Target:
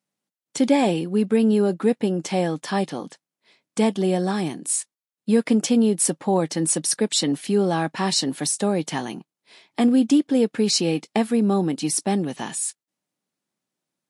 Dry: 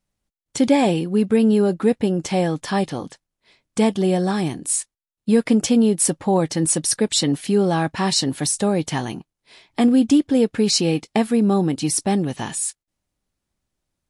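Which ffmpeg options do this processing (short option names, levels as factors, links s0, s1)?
-af "highpass=f=160:w=0.5412,highpass=f=160:w=1.3066,volume=0.794"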